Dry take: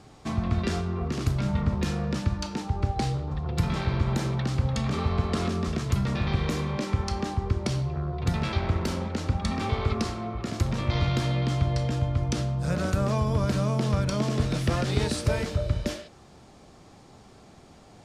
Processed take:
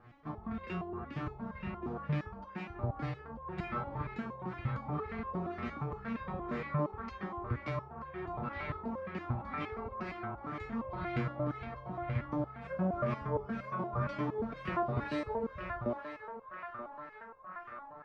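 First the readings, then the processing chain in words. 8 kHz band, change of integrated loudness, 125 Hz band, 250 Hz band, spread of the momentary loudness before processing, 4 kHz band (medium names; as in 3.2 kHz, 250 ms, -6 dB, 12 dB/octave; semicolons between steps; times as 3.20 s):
under -30 dB, -11.0 dB, -14.0 dB, -9.5 dB, 4 LU, -20.5 dB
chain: band-passed feedback delay 931 ms, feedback 80%, band-pass 1.3 kHz, level -5.5 dB; LFO low-pass sine 2 Hz 820–2300 Hz; resonator arpeggio 8.6 Hz 120–530 Hz; trim +2.5 dB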